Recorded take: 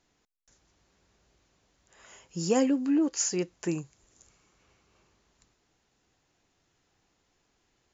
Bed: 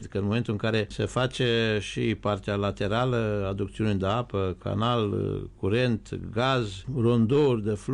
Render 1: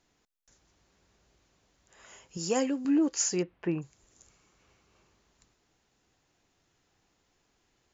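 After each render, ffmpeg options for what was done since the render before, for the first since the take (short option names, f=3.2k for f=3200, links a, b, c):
-filter_complex "[0:a]asettb=1/sr,asplit=3[a][b][c];[a]atrim=end=2.374[d];[b]atrim=start=2.37:end=2.85,asetpts=PTS-STARTPTS,afade=t=in:d=0.004:c=qsin,afade=t=out:st=0.476:d=0.004:c=qsin,equalizer=f=120:w=0.3:g=-7[e];[c]atrim=start=2.846[f];[d][e]acrossfade=d=0.004:c1=hsin:c2=qsin[g];[g][f]acrossfade=d=0.004:c1=qsin:c2=hsin,asplit=3[h][i][j];[h]afade=t=out:st=3.41:d=0.02[k];[i]lowpass=f=2.9k:w=0.5412,lowpass=f=2.9k:w=1.3066,afade=t=in:st=3.41:d=0.02,afade=t=out:st=3.81:d=0.02[l];[j]afade=t=in:st=3.81:d=0.02[m];[k][l][m]amix=inputs=3:normalize=0"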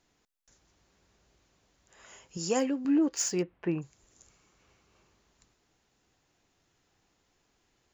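-filter_complex "[0:a]asettb=1/sr,asplit=3[a][b][c];[a]atrim=end=2.594[d];[b]atrim=start=2.59:end=3.68,asetpts=PTS-STARTPTS,afade=t=in:d=0.004:c=qsin,afade=t=out:st=1.086:d=0.004:c=qsin,adynamicsmooth=sensitivity=7:basefreq=4.3k[e];[c]atrim=start=3.676[f];[d][e]acrossfade=d=0.004:c1=hsin:c2=qsin[g];[g][f]acrossfade=d=0.004:c1=qsin:c2=hsin"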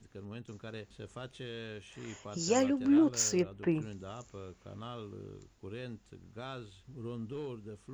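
-filter_complex "[1:a]volume=-19dB[a];[0:a][a]amix=inputs=2:normalize=0"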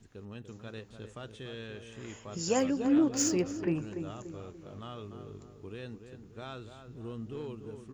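-filter_complex "[0:a]asplit=2[a][b];[b]adelay=291,lowpass=f=1.6k:p=1,volume=-8dB,asplit=2[c][d];[d]adelay=291,lowpass=f=1.6k:p=1,volume=0.46,asplit=2[e][f];[f]adelay=291,lowpass=f=1.6k:p=1,volume=0.46,asplit=2[g][h];[h]adelay=291,lowpass=f=1.6k:p=1,volume=0.46,asplit=2[i][j];[j]adelay=291,lowpass=f=1.6k:p=1,volume=0.46[k];[a][c][e][g][i][k]amix=inputs=6:normalize=0"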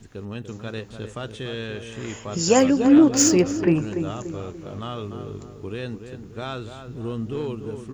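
-af "volume=11.5dB"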